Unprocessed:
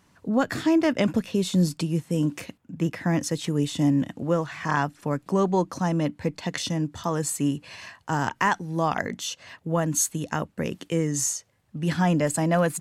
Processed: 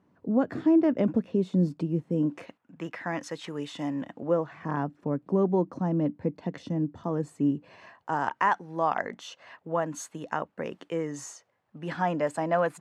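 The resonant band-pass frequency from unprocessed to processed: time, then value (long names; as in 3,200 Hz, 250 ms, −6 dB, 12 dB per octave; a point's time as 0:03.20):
resonant band-pass, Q 0.78
0:02.17 330 Hz
0:02.60 1,200 Hz
0:03.88 1,200 Hz
0:04.69 300 Hz
0:07.52 300 Hz
0:08.23 860 Hz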